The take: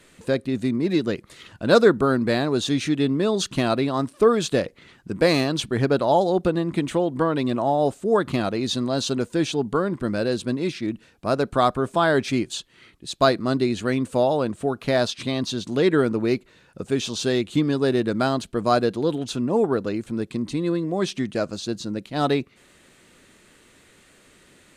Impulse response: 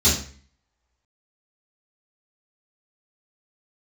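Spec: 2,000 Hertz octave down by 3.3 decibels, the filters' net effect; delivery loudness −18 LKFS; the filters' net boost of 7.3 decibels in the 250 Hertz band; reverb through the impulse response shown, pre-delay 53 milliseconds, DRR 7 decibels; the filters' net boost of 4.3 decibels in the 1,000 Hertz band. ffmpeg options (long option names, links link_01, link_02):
-filter_complex "[0:a]equalizer=frequency=250:width_type=o:gain=8.5,equalizer=frequency=1000:width_type=o:gain=7.5,equalizer=frequency=2000:width_type=o:gain=-8.5,asplit=2[link_01][link_02];[1:a]atrim=start_sample=2205,adelay=53[link_03];[link_02][link_03]afir=irnorm=-1:irlink=0,volume=-23.5dB[link_04];[link_01][link_04]amix=inputs=2:normalize=0,volume=-3dB"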